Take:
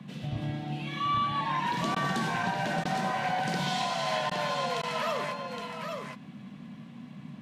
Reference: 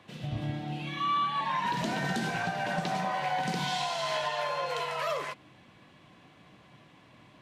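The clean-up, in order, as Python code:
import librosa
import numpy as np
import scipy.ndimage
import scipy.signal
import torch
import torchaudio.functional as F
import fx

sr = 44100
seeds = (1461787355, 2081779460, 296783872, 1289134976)

y = fx.fix_declick_ar(x, sr, threshold=6.5)
y = fx.fix_interpolate(y, sr, at_s=(1.95, 2.84, 4.3, 4.82), length_ms=11.0)
y = fx.noise_reduce(y, sr, print_start_s=6.75, print_end_s=7.25, reduce_db=13.0)
y = fx.fix_echo_inverse(y, sr, delay_ms=816, level_db=-5.5)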